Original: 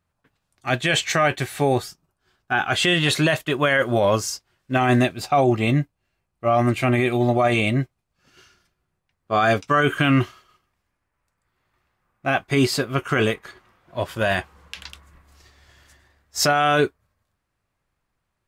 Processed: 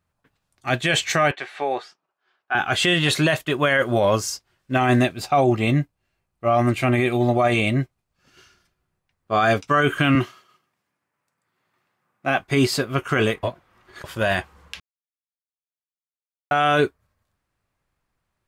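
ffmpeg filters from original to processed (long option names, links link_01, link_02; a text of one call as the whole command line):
ffmpeg -i in.wav -filter_complex "[0:a]asettb=1/sr,asplit=3[link_01][link_02][link_03];[link_01]atrim=end=1.314[link_04];[link_02]atrim=start=1.31:end=2.55,asetpts=PTS-STARTPTS,afade=type=in:duration=0.004:curve=qsin,afade=type=out:start_time=1.236:duration=0.004:curve=qsin,highpass=560,lowpass=3100[link_05];[link_03]atrim=start=2.546[link_06];[link_04][link_05]acrossfade=duration=0.004:curve1=hsin:curve2=qsin[link_07];[link_07][link_06]acrossfade=duration=0.004:curve1=qsin:curve2=hsin,asettb=1/sr,asplit=3[link_08][link_09][link_10];[link_08]atrim=end=10.154[link_11];[link_09]atrim=start=10.15:end=12.39,asetpts=PTS-STARTPTS,afade=type=in:duration=0.004:curve=qsin,afade=type=out:start_time=2.236:duration=0.004:curve=qsin,highpass=frequency=130:width=0.5412,highpass=frequency=130:width=1.3066[link_12];[link_10]atrim=start=12.386[link_13];[link_11][link_12]acrossfade=duration=0.004:curve1=hsin:curve2=qsin[link_14];[link_14][link_13]acrossfade=duration=0.004:curve1=qsin:curve2=hsin,asplit=5[link_15][link_16][link_17][link_18][link_19];[link_15]atrim=end=13.432[link_20];[link_16]atrim=start=13.428:end=14.042,asetpts=PTS-STARTPTS,areverse[link_21];[link_17]atrim=start=14.038:end=14.8,asetpts=PTS-STARTPTS,afade=type=out:start_time=0.758:duration=0.004:curve=hsin[link_22];[link_18]atrim=start=14.8:end=16.51,asetpts=PTS-STARTPTS,volume=0[link_23];[link_19]atrim=start=16.51,asetpts=PTS-STARTPTS,afade=type=in:duration=0.004:curve=hsin[link_24];[link_20][link_21]acrossfade=duration=0.004:curve1=hsin:curve2=hsin[link_25];[link_22][link_23][link_24]concat=n=3:v=0:a=1[link_26];[link_25][link_26]acrossfade=duration=0.004:curve1=hsin:curve2=hsin" out.wav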